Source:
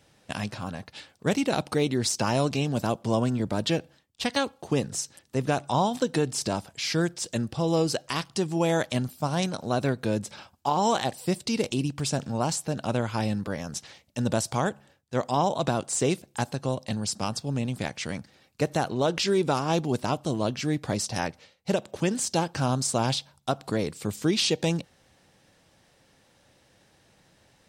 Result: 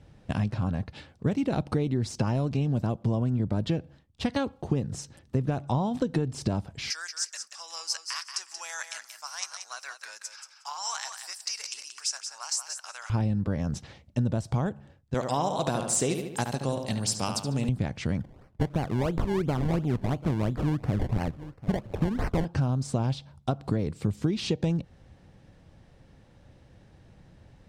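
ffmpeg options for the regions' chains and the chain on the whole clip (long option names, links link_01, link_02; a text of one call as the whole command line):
ffmpeg -i in.wav -filter_complex "[0:a]asettb=1/sr,asplit=3[link_01][link_02][link_03];[link_01]atrim=end=6.904[link_04];[link_02]atrim=start=6.9:end=13.1,asetpts=PTS-STARTPTS,afade=type=in:duration=0.004:curve=qsin,afade=type=out:start_time=6.196:duration=0.004:curve=qsin,highpass=frequency=1300:width=0.5412,highpass=frequency=1300:width=1.3066,highshelf=frequency=4400:width_type=q:width=3:gain=7,aecho=1:1:181|362|543:0.398|0.0637|0.0102,atrim=end_sample=273420[link_05];[link_03]atrim=start=13.096[link_06];[link_04][link_05]acrossfade=duration=0.004:curve1=hsin:curve2=qsin[link_07];[link_07][link_06]acrossfade=duration=0.004:curve1=qsin:curve2=hsin,asettb=1/sr,asplit=3[link_08][link_09][link_10];[link_08]atrim=end=15.144[link_11];[link_09]atrim=start=15.14:end=17.69,asetpts=PTS-STARTPTS,afade=type=in:duration=0.004:curve=qsin,afade=type=out:start_time=2.546:duration=0.004:curve=qsin,aemphasis=mode=production:type=riaa,asplit=2[link_12][link_13];[link_13]adelay=73,lowpass=frequency=4100:poles=1,volume=-7dB,asplit=2[link_14][link_15];[link_15]adelay=73,lowpass=frequency=4100:poles=1,volume=0.52,asplit=2[link_16][link_17];[link_17]adelay=73,lowpass=frequency=4100:poles=1,volume=0.52,asplit=2[link_18][link_19];[link_19]adelay=73,lowpass=frequency=4100:poles=1,volume=0.52,asplit=2[link_20][link_21];[link_21]adelay=73,lowpass=frequency=4100:poles=1,volume=0.52,asplit=2[link_22][link_23];[link_23]adelay=73,lowpass=frequency=4100:poles=1,volume=0.52[link_24];[link_12][link_14][link_16][link_18][link_20][link_22][link_24]amix=inputs=7:normalize=0,atrim=end_sample=112455[link_25];[link_10]atrim=start=17.686[link_26];[link_11][link_25]acrossfade=duration=0.004:curve1=hsin:curve2=qsin[link_27];[link_27][link_26]acrossfade=duration=0.004:curve1=qsin:curve2=hsin,asettb=1/sr,asplit=3[link_28][link_29][link_30];[link_28]atrim=end=18.204[link_31];[link_29]atrim=start=18.2:end=22.45,asetpts=PTS-STARTPTS,afade=type=in:duration=0.004:curve=qsin,afade=type=out:start_time=4.246:duration=0.004:curve=qsin,acrusher=samples=24:mix=1:aa=0.000001:lfo=1:lforange=24:lforate=2.9,aecho=1:1:740:0.075,atrim=end_sample=187425[link_32];[link_30]atrim=start=22.446[link_33];[link_31][link_32]acrossfade=duration=0.004:curve1=hsin:curve2=qsin[link_34];[link_34][link_33]acrossfade=duration=0.004:curve1=qsin:curve2=hsin,aemphasis=mode=reproduction:type=riaa,acompressor=threshold=-23dB:ratio=6,highshelf=frequency=8700:gain=7" out.wav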